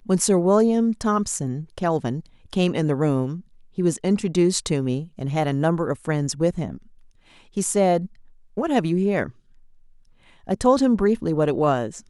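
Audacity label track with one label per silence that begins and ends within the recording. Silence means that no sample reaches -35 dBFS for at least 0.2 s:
2.260000	2.530000	silence
3.400000	3.780000	silence
6.780000	7.570000	silence
8.060000	8.570000	silence
9.300000	10.470000	silence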